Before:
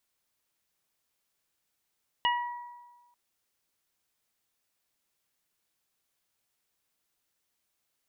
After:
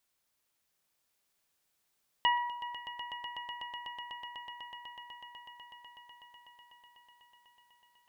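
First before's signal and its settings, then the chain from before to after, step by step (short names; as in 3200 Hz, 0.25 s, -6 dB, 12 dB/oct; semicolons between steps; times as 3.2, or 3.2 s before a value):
additive tone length 0.89 s, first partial 965 Hz, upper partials -5/-1 dB, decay 1.32 s, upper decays 0.83/0.27 s, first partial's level -23.5 dB
notches 60/120/180/240/300/360/420/480 Hz; on a send: swelling echo 0.124 s, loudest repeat 8, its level -13 dB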